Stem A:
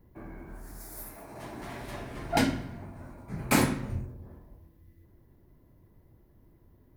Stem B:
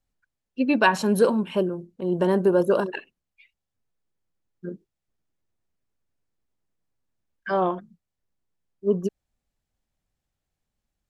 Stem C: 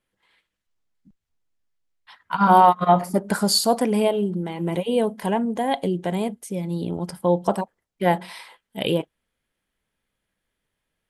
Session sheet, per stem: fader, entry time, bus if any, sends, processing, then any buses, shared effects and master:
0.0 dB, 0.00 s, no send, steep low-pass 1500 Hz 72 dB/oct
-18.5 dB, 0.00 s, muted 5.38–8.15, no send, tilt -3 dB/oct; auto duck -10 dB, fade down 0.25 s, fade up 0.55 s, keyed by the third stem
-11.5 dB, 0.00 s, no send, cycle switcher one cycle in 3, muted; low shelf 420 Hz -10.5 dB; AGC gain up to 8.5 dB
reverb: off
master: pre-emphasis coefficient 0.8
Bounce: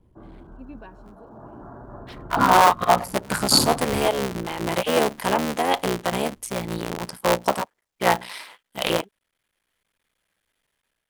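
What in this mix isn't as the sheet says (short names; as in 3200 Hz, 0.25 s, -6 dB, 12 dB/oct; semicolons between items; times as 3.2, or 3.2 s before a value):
stem B -18.5 dB -> -25.5 dB; stem C -11.5 dB -> -1.0 dB; master: missing pre-emphasis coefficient 0.8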